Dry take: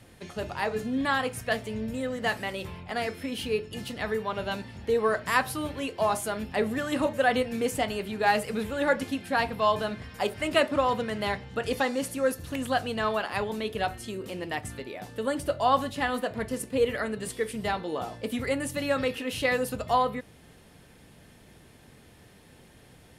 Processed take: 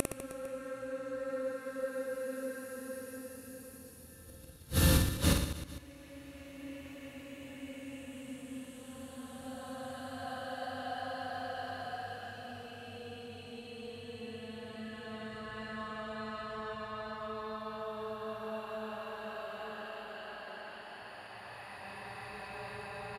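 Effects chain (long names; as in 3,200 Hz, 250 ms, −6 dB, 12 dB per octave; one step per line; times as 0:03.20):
extreme stretch with random phases 19×, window 0.25 s, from 0:12.17
gate with flip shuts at −30 dBFS, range −32 dB
reverse bouncing-ball delay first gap 50 ms, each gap 1.3×, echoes 5
level +15.5 dB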